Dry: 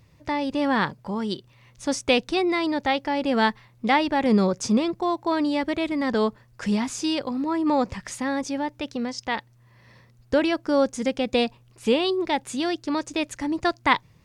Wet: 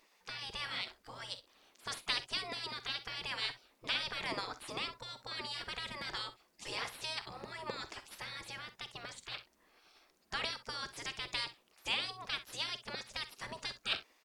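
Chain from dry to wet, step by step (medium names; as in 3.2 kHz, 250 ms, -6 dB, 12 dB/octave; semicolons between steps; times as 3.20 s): spectral gate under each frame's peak -20 dB weak; early reflections 47 ms -15.5 dB, 63 ms -16 dB; trim -2 dB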